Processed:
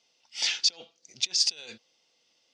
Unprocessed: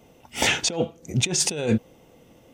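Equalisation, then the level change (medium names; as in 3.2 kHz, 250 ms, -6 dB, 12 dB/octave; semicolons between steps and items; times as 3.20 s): band-pass filter 4.8 kHz, Q 4.6; distance through air 69 m; +8.5 dB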